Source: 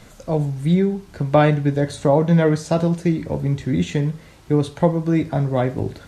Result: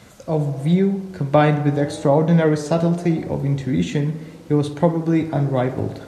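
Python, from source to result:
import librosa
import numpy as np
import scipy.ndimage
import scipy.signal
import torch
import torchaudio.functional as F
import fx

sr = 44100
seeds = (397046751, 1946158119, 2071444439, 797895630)

p1 = scipy.signal.sosfilt(scipy.signal.butter(2, 72.0, 'highpass', fs=sr, output='sos'), x)
y = p1 + fx.echo_tape(p1, sr, ms=61, feedback_pct=89, wet_db=-12.5, lp_hz=2100.0, drive_db=4.0, wow_cents=37, dry=0)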